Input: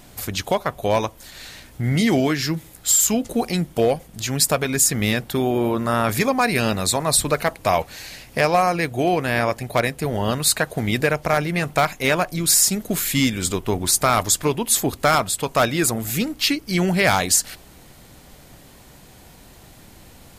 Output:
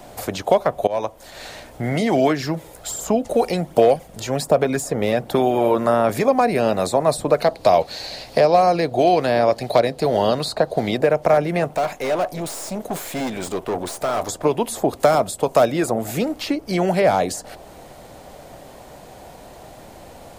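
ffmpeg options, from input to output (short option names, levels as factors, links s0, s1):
-filter_complex "[0:a]asplit=3[s0][s1][s2];[s0]afade=t=out:st=2.08:d=0.02[s3];[s1]aphaser=in_gain=1:out_gain=1:delay=2.2:decay=0.36:speed=1.3:type=sinusoidal,afade=t=in:st=2.08:d=0.02,afade=t=out:st=5.74:d=0.02[s4];[s2]afade=t=in:st=5.74:d=0.02[s5];[s3][s4][s5]amix=inputs=3:normalize=0,asettb=1/sr,asplit=3[s6][s7][s8];[s6]atrim=end=7.414[s9];[s7]atrim=start=7.41:end=10.97,asetpts=PTS-STARTPTS,afade=t=in:d=0.004:c=qsin,afade=t=out:st=3.556:d=0.004:c=qsin,equalizer=f=4300:t=o:w=0.64:g=14[s10];[s8]atrim=start=10.966[s11];[s9][s10]acrossfade=d=0.004:c1=hsin:c2=qsin[s12];[s12][s11]acrossfade=d=0.004:c1=qsin:c2=hsin,asettb=1/sr,asplit=3[s13][s14][s15];[s13]atrim=end=11.674[s16];[s14]atrim=start=11.67:end=14.29,asetpts=PTS-STARTPTS,afade=t=in:d=0.004:c=qsin,afade=t=out:st=2.616:d=0.004:c=qsin,aeval=exprs='(tanh(20*val(0)+0.5)-tanh(0.5))/20':c=same[s17];[s15]atrim=start=14.286[s18];[s16][s17]acrossfade=d=0.004:c1=hsin:c2=qsin[s19];[s19][s18]acrossfade=d=0.004:c1=qsin:c2=hsin,asettb=1/sr,asplit=3[s20][s21][s22];[s20]atrim=end=15.004[s23];[s21]atrim=start=15:end=15.72,asetpts=PTS-STARTPTS,afade=t=in:d=0.004:c=qsin,afade=t=out:st=0.716:d=0.004:c=qsin,highshelf=f=4200:g=9[s24];[s22]atrim=start=15.716[s25];[s23][s24]acrossfade=d=0.004:c1=hsin:c2=qsin[s26];[s26][s25]acrossfade=d=0.004:c1=qsin:c2=hsin,asplit=2[s27][s28];[s27]atrim=end=0.87,asetpts=PTS-STARTPTS,afade=t=out:st=0.866:d=0.004:c=hsin:silence=0.0891251[s29];[s28]atrim=start=0.87,asetpts=PTS-STARTPTS,afade=t=in:d=0.56:silence=0.0891251[s30];[s29][s30]concat=n=2:v=0:a=1,equalizer=f=12000:w=4.5:g=-7,acrossover=split=120|480|1100[s31][s32][s33][s34];[s31]acompressor=threshold=0.00631:ratio=4[s35];[s32]acompressor=threshold=0.0631:ratio=4[s36];[s33]acompressor=threshold=0.02:ratio=4[s37];[s34]acompressor=threshold=0.0282:ratio=4[s38];[s35][s36][s37][s38]amix=inputs=4:normalize=0,equalizer=f=640:w=0.95:g=14"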